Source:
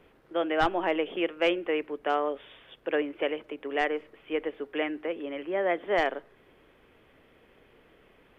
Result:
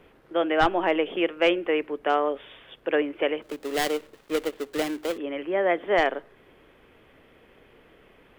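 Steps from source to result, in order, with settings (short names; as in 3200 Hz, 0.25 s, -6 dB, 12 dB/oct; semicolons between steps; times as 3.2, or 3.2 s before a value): 3.42–5.18 switching dead time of 0.23 ms; gain +4 dB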